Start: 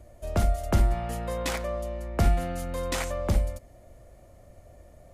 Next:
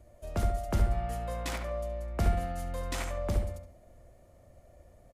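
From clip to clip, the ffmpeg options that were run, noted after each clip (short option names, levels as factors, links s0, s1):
-filter_complex "[0:a]asplit=2[s0][s1];[s1]adelay=70,lowpass=f=2200:p=1,volume=0.596,asplit=2[s2][s3];[s3]adelay=70,lowpass=f=2200:p=1,volume=0.42,asplit=2[s4][s5];[s5]adelay=70,lowpass=f=2200:p=1,volume=0.42,asplit=2[s6][s7];[s7]adelay=70,lowpass=f=2200:p=1,volume=0.42,asplit=2[s8][s9];[s9]adelay=70,lowpass=f=2200:p=1,volume=0.42[s10];[s0][s2][s4][s6][s8][s10]amix=inputs=6:normalize=0,volume=0.473"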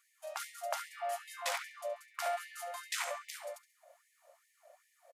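-af "aecho=1:1:136:0.075,afftfilt=real='re*gte(b*sr/1024,500*pow(1800/500,0.5+0.5*sin(2*PI*2.5*pts/sr)))':imag='im*gte(b*sr/1024,500*pow(1800/500,0.5+0.5*sin(2*PI*2.5*pts/sr)))':win_size=1024:overlap=0.75,volume=1.33"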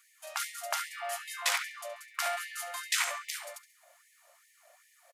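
-af "highpass=1200,volume=2.66"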